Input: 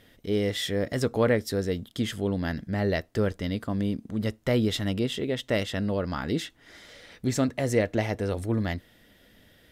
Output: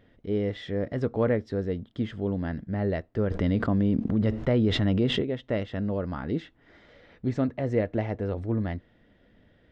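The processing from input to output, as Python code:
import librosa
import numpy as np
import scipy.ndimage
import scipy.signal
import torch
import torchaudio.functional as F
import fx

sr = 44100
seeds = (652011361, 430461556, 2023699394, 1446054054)

y = fx.spacing_loss(x, sr, db_at_10k=36)
y = fx.env_flatten(y, sr, amount_pct=70, at=(3.3, 5.21), fade=0.02)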